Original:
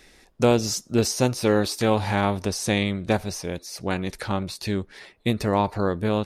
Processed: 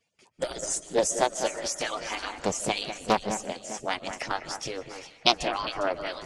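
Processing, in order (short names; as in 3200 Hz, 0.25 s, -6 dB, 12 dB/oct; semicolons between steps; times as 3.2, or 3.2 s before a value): median-filter separation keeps percussive; gate with hold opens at -48 dBFS; spectral gain 5.15–5.35, 600–5100 Hz +12 dB; reverse; upward compressor, threshold -42 dBFS; reverse; formant shift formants +4 st; echo with dull and thin repeats by turns 0.202 s, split 2400 Hz, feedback 63%, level -9 dB; on a send at -17 dB: reverb RT60 0.65 s, pre-delay 0.105 s; on the sum: downsampling 22050 Hz; Doppler distortion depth 0.34 ms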